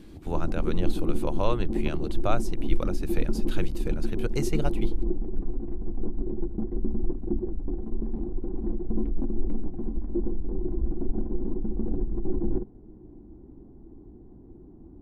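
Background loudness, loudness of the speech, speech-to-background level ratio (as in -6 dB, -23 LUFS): -33.0 LUFS, -33.5 LUFS, -0.5 dB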